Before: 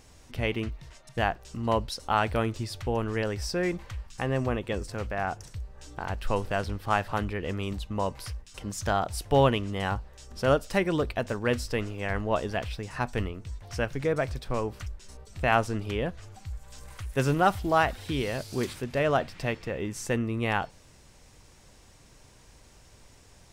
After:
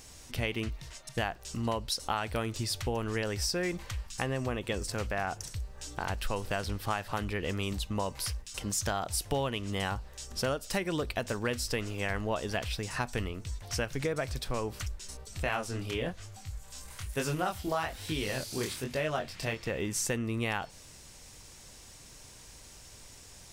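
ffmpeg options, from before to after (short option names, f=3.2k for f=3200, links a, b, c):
-filter_complex "[0:a]asettb=1/sr,asplit=3[a][b][c];[a]atrim=end=15.434[d];[b]atrim=start=15.43:end=19.66,asetpts=PTS-STARTPTS,afade=t=in:d=0.004:c=qsin,afade=t=out:st=4.226:d=0.004:c=qsin,flanger=delay=19:depth=7.9:speed=1.1[e];[c]atrim=start=19.656[f];[d][e]acrossfade=d=0.004:c1=hsin:c2=qsin[g];[g][f]acrossfade=d=0.004:c1=qsin:c2=hsin,highshelf=f=3k:g=10,acompressor=threshold=-28dB:ratio=6"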